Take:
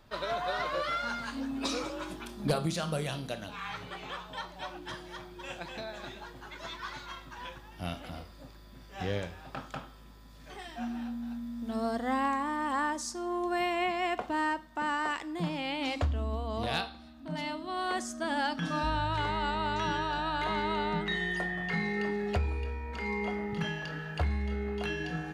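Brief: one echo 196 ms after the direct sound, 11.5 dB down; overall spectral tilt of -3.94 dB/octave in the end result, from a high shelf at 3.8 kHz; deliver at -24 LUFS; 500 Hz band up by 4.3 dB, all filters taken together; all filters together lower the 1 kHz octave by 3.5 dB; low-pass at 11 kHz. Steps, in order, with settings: low-pass 11 kHz; peaking EQ 500 Hz +8 dB; peaking EQ 1 kHz -8 dB; treble shelf 3.8 kHz +3.5 dB; delay 196 ms -11.5 dB; trim +8.5 dB

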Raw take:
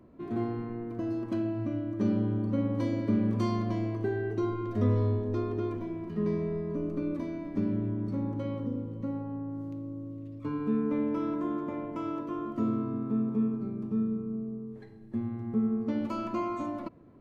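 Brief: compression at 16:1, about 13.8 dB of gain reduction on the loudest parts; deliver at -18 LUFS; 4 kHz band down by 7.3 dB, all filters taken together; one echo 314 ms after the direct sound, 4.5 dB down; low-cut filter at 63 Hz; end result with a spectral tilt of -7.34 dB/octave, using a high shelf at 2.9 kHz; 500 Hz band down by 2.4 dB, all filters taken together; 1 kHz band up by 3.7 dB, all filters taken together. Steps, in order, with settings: high-pass 63 Hz; peaking EQ 500 Hz -4.5 dB; peaking EQ 1 kHz +6.5 dB; treble shelf 2.9 kHz -7 dB; peaking EQ 4 kHz -4.5 dB; compression 16:1, threshold -37 dBFS; delay 314 ms -4.5 dB; trim +23.5 dB

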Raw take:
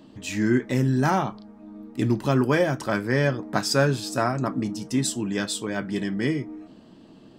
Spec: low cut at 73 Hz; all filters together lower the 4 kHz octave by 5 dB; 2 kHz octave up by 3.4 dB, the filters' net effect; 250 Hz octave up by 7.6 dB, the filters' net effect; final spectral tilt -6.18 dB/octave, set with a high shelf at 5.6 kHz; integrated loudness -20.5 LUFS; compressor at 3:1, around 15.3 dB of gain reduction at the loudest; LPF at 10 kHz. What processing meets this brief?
high-pass 73 Hz; low-pass 10 kHz; peaking EQ 250 Hz +9 dB; peaking EQ 2 kHz +6 dB; peaking EQ 4 kHz -4 dB; treble shelf 5.6 kHz -8.5 dB; compression 3:1, threshold -32 dBFS; trim +12 dB

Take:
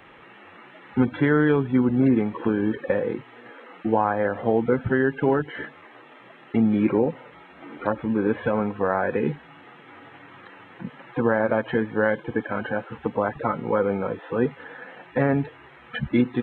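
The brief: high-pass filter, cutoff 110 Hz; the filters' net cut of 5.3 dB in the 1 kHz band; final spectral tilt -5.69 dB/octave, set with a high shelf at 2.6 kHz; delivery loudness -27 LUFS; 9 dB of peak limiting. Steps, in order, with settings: high-pass 110 Hz; peaking EQ 1 kHz -9 dB; treble shelf 2.6 kHz +9 dB; trim +2.5 dB; peak limiter -15.5 dBFS

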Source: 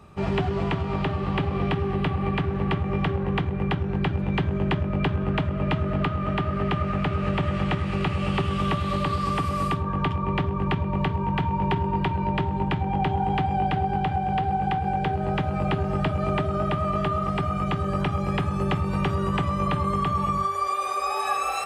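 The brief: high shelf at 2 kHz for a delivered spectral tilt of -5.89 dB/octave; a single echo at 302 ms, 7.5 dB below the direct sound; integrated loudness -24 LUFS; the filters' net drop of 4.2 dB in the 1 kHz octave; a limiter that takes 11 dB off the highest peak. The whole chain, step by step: peaking EQ 1 kHz -6.5 dB; treble shelf 2 kHz +3.5 dB; peak limiter -24 dBFS; delay 302 ms -7.5 dB; trim +8 dB

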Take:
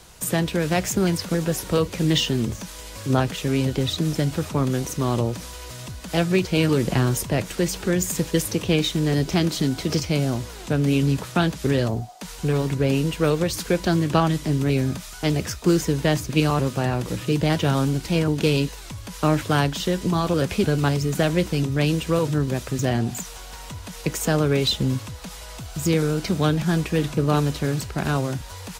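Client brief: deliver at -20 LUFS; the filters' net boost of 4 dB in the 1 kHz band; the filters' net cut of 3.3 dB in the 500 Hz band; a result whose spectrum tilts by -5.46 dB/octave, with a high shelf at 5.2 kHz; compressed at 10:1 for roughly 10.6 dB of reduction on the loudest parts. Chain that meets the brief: peaking EQ 500 Hz -6 dB; peaking EQ 1 kHz +7.5 dB; treble shelf 5.2 kHz -7 dB; compression 10:1, threshold -24 dBFS; trim +10 dB

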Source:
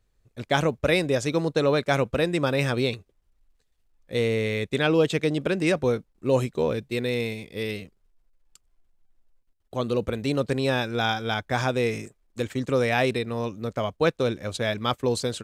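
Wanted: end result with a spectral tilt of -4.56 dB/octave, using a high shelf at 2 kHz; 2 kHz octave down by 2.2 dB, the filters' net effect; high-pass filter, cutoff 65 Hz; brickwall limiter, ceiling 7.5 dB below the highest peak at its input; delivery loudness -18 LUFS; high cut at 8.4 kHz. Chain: high-pass 65 Hz; low-pass 8.4 kHz; treble shelf 2 kHz +5 dB; peaking EQ 2 kHz -6 dB; trim +9 dB; peak limiter -5.5 dBFS

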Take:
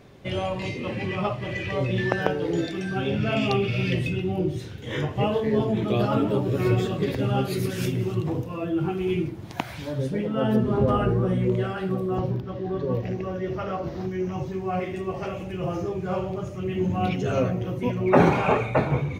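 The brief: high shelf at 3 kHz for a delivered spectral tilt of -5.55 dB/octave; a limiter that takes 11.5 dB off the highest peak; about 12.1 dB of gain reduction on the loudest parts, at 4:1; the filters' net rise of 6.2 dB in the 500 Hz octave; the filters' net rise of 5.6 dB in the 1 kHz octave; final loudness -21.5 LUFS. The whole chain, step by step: peaking EQ 500 Hz +7 dB; peaking EQ 1 kHz +5.5 dB; treble shelf 3 kHz -7 dB; compression 4:1, threshold -22 dBFS; trim +6 dB; peak limiter -11.5 dBFS

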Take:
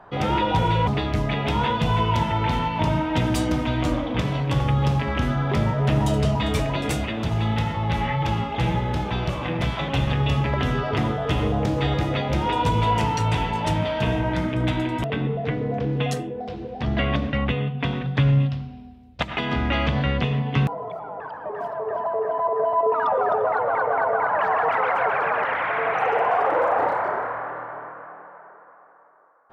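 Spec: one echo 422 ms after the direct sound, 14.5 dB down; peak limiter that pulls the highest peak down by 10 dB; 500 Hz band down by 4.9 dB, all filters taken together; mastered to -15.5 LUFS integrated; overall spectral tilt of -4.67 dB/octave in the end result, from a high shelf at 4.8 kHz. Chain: peaking EQ 500 Hz -6.5 dB; treble shelf 4.8 kHz +8 dB; peak limiter -18.5 dBFS; delay 422 ms -14.5 dB; trim +12 dB

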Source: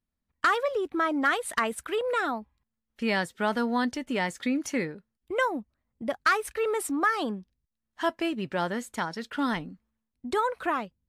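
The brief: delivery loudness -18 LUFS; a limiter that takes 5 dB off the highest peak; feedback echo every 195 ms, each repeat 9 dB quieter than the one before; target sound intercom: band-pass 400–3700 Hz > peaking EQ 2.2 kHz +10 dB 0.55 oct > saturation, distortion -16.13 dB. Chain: peak limiter -19.5 dBFS; band-pass 400–3700 Hz; peaking EQ 2.2 kHz +10 dB 0.55 oct; feedback delay 195 ms, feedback 35%, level -9 dB; saturation -20.5 dBFS; trim +13.5 dB

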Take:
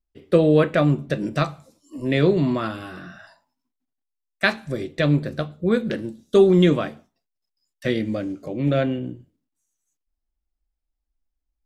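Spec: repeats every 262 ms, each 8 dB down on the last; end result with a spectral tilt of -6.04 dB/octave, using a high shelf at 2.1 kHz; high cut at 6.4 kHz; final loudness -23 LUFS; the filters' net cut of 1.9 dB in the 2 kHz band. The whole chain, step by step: low-pass 6.4 kHz; peaking EQ 2 kHz -5.5 dB; treble shelf 2.1 kHz +5.5 dB; feedback delay 262 ms, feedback 40%, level -8 dB; trim -1.5 dB

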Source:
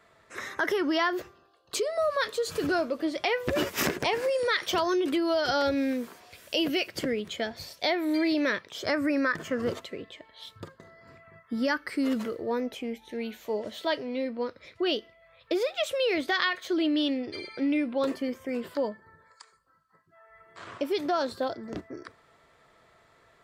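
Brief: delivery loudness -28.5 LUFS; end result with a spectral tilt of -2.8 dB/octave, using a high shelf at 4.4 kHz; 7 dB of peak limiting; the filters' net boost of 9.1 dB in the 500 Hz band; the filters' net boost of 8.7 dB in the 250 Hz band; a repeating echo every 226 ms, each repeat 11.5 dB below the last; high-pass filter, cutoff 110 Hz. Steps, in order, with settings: high-pass 110 Hz; peaking EQ 250 Hz +7.5 dB; peaking EQ 500 Hz +9 dB; treble shelf 4.4 kHz +4 dB; peak limiter -14 dBFS; feedback delay 226 ms, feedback 27%, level -11.5 dB; trim -5.5 dB

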